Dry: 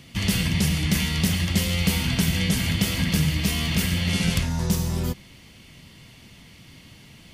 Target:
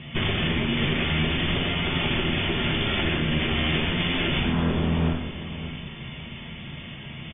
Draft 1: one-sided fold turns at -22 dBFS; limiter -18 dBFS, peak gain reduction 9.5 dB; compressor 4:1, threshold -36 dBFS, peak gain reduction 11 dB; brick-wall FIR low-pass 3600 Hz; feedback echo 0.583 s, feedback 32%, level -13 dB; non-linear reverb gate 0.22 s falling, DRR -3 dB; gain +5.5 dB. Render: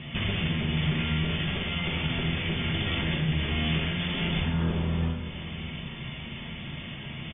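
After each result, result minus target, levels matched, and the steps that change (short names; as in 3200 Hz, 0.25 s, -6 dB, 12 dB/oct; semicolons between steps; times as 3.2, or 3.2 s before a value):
one-sided fold: distortion -13 dB; compressor: peak gain reduction +6 dB
change: one-sided fold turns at -31.5 dBFS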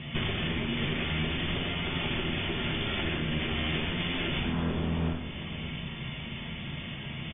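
compressor: peak gain reduction +6.5 dB
change: compressor 4:1, threshold -27.5 dBFS, peak gain reduction 4.5 dB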